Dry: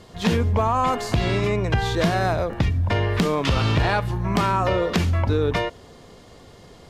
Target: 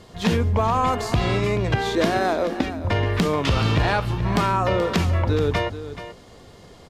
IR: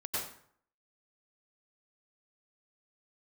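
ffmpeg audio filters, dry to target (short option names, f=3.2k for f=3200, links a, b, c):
-filter_complex "[0:a]asettb=1/sr,asplit=3[a][b][c];[a]atrim=end=1.754[d];[b]atrim=start=1.75:end=2.85,asetpts=PTS-STARTPTS,afade=t=in:d=0.004:c=qsin,afade=t=out:st=1.096:d=0.004:c=qsin,lowshelf=f=180:t=q:w=3:g=-12[e];[c]atrim=start=2.846[f];[d][e]acrossfade=d=0.004:c1=hsin:c2=qsin[g];[g][f]acrossfade=d=0.004:c1=qsin:c2=hsin,asplit=2[h][i];[i]aecho=0:1:430:0.237[j];[h][j]amix=inputs=2:normalize=0"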